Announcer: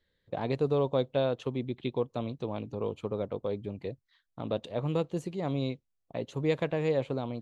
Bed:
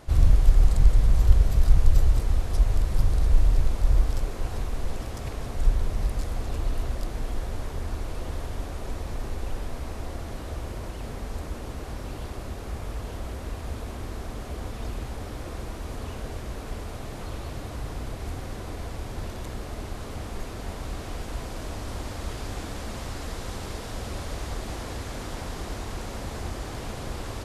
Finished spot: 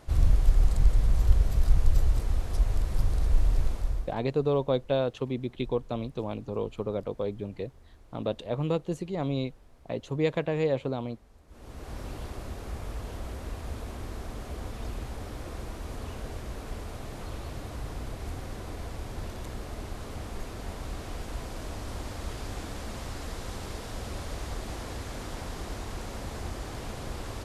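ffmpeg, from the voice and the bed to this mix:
-filter_complex "[0:a]adelay=3750,volume=1.19[s0];[1:a]volume=6.68,afade=t=out:st=3.67:d=0.48:silence=0.105925,afade=t=in:st=11.47:d=0.52:silence=0.0944061[s1];[s0][s1]amix=inputs=2:normalize=0"

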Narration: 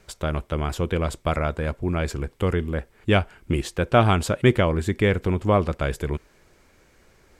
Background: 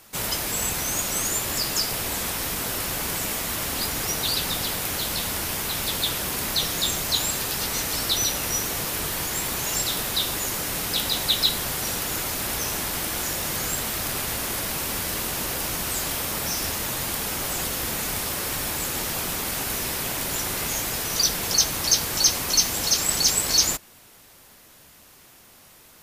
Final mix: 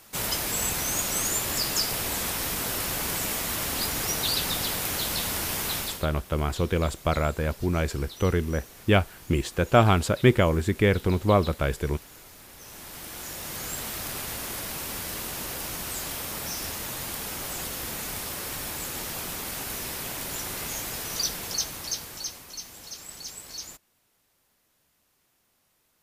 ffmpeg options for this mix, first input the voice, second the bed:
-filter_complex "[0:a]adelay=5800,volume=0.891[s0];[1:a]volume=4.73,afade=t=out:st=5.74:d=0.32:silence=0.105925,afade=t=in:st=12.55:d=1.3:silence=0.177828,afade=t=out:st=21.14:d=1.31:silence=0.223872[s1];[s0][s1]amix=inputs=2:normalize=0"

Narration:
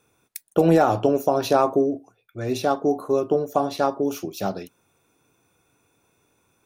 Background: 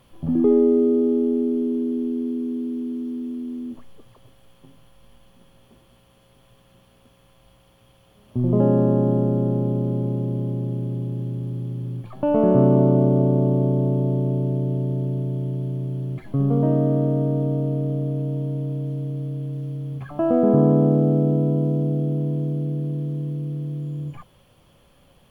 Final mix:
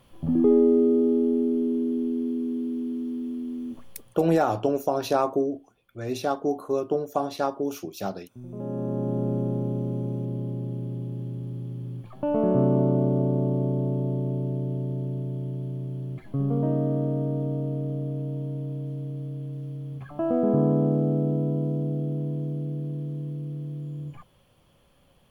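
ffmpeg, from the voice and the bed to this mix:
-filter_complex "[0:a]adelay=3600,volume=0.596[s0];[1:a]volume=4.22,afade=t=out:st=3.94:d=0.4:silence=0.125893,afade=t=in:st=8.53:d=0.79:silence=0.188365[s1];[s0][s1]amix=inputs=2:normalize=0"

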